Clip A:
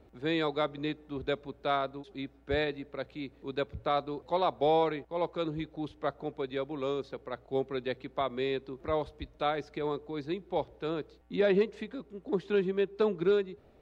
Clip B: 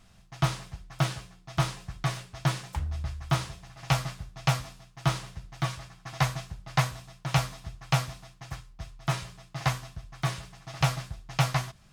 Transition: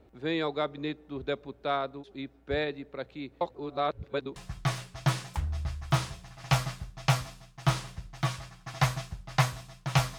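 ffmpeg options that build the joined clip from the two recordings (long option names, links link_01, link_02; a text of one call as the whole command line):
ffmpeg -i cue0.wav -i cue1.wav -filter_complex "[0:a]apad=whole_dur=10.18,atrim=end=10.18,asplit=2[link_01][link_02];[link_01]atrim=end=3.412[link_03];[link_02]atrim=start=3.408:end=4.362,asetpts=PTS-STARTPTS,areverse[link_04];[1:a]atrim=start=1.748:end=7.57[link_05];[link_03][link_04]acrossfade=duration=0.004:curve1=hsin:curve2=hsin[link_06];[link_06][link_05]acrossfade=duration=0.004:curve1=hsin:curve2=hsin" out.wav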